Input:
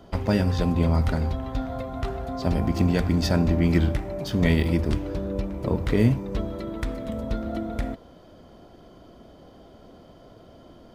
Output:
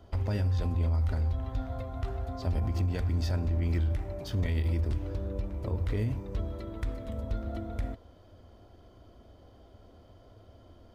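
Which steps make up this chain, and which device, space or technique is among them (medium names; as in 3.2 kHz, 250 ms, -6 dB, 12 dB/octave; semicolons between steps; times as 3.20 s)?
car stereo with a boomy subwoofer (resonant low shelf 120 Hz +6 dB, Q 3; peak limiter -14.5 dBFS, peak gain reduction 9 dB); trim -8 dB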